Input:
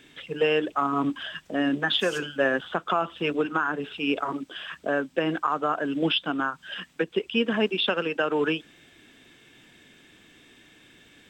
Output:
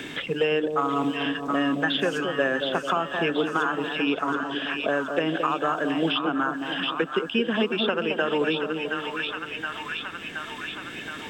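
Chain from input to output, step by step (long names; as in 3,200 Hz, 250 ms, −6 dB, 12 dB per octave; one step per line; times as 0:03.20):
0:04.03–0:04.70: Chebyshev low-pass filter 6,100 Hz
echo with a time of its own for lows and highs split 940 Hz, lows 219 ms, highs 722 ms, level −7 dB
multiband upward and downward compressor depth 70%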